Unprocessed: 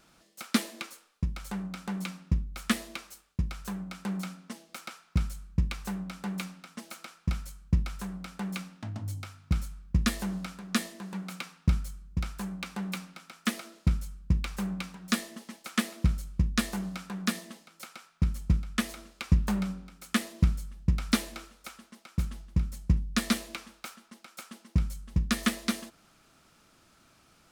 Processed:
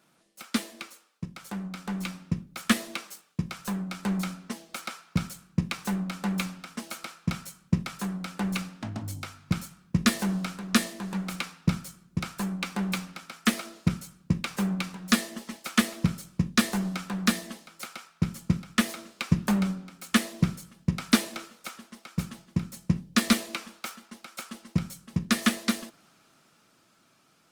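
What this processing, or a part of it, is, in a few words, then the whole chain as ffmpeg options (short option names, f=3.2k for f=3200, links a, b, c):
video call: -af "highpass=f=120:w=0.5412,highpass=f=120:w=1.3066,dynaudnorm=f=310:g=13:m=8dB,volume=-2dB" -ar 48000 -c:a libopus -b:a 32k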